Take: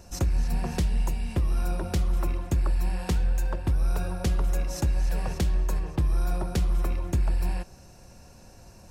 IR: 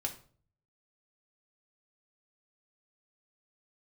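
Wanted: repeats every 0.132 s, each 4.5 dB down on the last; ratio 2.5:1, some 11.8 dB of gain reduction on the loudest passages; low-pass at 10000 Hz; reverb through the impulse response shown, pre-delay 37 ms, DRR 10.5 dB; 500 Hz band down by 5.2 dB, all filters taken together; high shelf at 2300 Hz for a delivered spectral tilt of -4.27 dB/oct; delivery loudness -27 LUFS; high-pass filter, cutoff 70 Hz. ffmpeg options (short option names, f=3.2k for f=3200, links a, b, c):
-filter_complex "[0:a]highpass=70,lowpass=10k,equalizer=f=500:t=o:g=-7.5,highshelf=f=2.3k:g=5,acompressor=threshold=-41dB:ratio=2.5,aecho=1:1:132|264|396|528|660|792|924|1056|1188:0.596|0.357|0.214|0.129|0.0772|0.0463|0.0278|0.0167|0.01,asplit=2[a][b];[1:a]atrim=start_sample=2205,adelay=37[c];[b][c]afir=irnorm=-1:irlink=0,volume=-11.5dB[d];[a][d]amix=inputs=2:normalize=0,volume=13.5dB"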